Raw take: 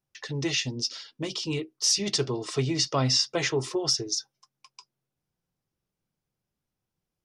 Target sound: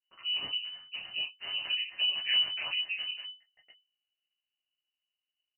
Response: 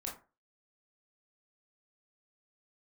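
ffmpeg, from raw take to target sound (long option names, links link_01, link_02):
-filter_complex "[0:a]aeval=exprs='val(0)*sin(2*PI*96*n/s)':channel_layout=same,acrossover=split=1600[link_01][link_02];[link_02]aeval=exprs='max(val(0),0)':channel_layout=same[link_03];[link_01][link_03]amix=inputs=2:normalize=0,lowshelf=frequency=85:gain=9.5,aeval=exprs='(mod(4.47*val(0)+1,2)-1)/4.47':channel_layout=same,atempo=1.3[link_04];[1:a]atrim=start_sample=2205,afade=type=out:start_time=0.14:duration=0.01,atrim=end_sample=6615,asetrate=79380,aresample=44100[link_05];[link_04][link_05]afir=irnorm=-1:irlink=0,lowpass=frequency=2600:width_type=q:width=0.5098,lowpass=frequency=2600:width_type=q:width=0.6013,lowpass=frequency=2600:width_type=q:width=0.9,lowpass=frequency=2600:width_type=q:width=2.563,afreqshift=-3000"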